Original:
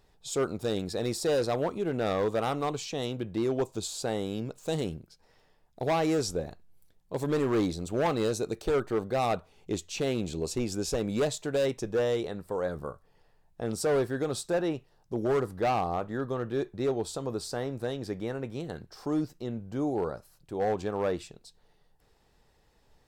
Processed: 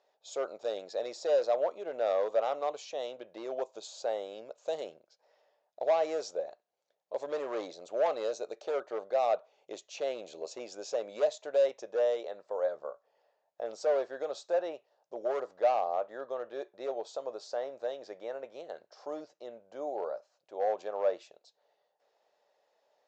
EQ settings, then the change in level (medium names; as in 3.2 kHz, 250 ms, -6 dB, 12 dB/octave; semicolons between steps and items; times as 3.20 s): resonant high-pass 590 Hz, resonance Q 4.9; elliptic low-pass 6.9 kHz, stop band 40 dB; -8.0 dB